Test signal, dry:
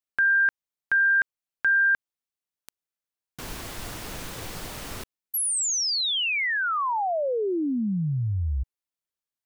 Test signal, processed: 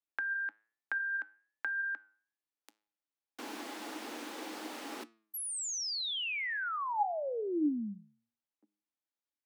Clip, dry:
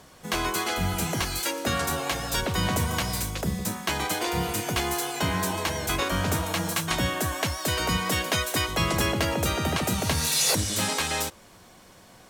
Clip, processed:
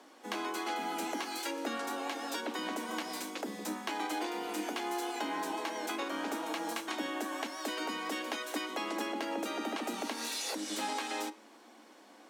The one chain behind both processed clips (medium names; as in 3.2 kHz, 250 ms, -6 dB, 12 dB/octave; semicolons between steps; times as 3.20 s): steep high-pass 220 Hz 72 dB/octave; treble shelf 6.8 kHz -10.5 dB; compression 6:1, threshold -30 dBFS; flange 1.2 Hz, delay 8.4 ms, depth 1.4 ms, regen +88%; small resonant body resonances 300/830 Hz, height 10 dB, ringing for 90 ms